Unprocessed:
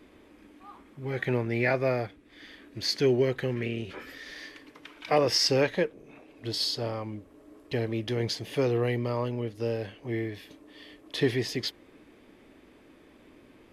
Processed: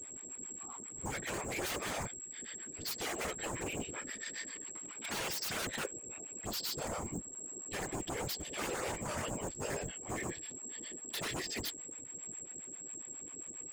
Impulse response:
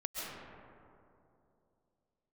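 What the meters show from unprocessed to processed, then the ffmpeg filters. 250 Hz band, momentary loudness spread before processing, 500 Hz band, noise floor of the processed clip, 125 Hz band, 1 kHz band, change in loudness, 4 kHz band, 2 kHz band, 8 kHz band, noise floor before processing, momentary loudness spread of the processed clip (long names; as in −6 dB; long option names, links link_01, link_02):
−12.0 dB, 18 LU, −14.5 dB, −49 dBFS, −14.5 dB, −5.5 dB, −10.5 dB, −9.5 dB, −6.0 dB, +5.5 dB, −56 dBFS, 7 LU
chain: -filter_complex "[0:a]lowpass=9600,acrossover=split=640[link_01][link_02];[link_01]aeval=exprs='val(0)*(1-1/2+1/2*cos(2*PI*7.4*n/s))':channel_layout=same[link_03];[link_02]aeval=exprs='val(0)*(1-1/2-1/2*cos(2*PI*7.4*n/s))':channel_layout=same[link_04];[link_03][link_04]amix=inputs=2:normalize=0,acrossover=split=450|920[link_05][link_06][link_07];[link_05]alimiter=level_in=5dB:limit=-24dB:level=0:latency=1:release=178,volume=-5dB[link_08];[link_08][link_06][link_07]amix=inputs=3:normalize=0,aeval=exprs='(mod(17.8*val(0)+1,2)-1)/17.8':channel_layout=same,aeval=exprs='val(0)+0.00501*sin(2*PI*7600*n/s)':channel_layout=same,aeval=exprs='0.0188*(abs(mod(val(0)/0.0188+3,4)-2)-1)':channel_layout=same,highpass=77,afftfilt=real='hypot(re,im)*cos(2*PI*random(0))':imag='hypot(re,im)*sin(2*PI*random(1))':win_size=512:overlap=0.75,volume=8dB"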